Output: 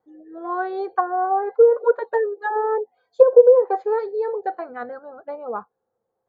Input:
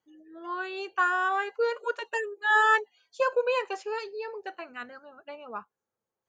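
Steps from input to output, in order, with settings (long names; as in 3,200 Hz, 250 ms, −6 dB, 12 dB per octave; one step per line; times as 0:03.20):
treble cut that deepens with the level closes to 570 Hz, closed at −22 dBFS
moving average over 16 samples
hollow resonant body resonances 500/730 Hz, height 11 dB, ringing for 35 ms
level +7.5 dB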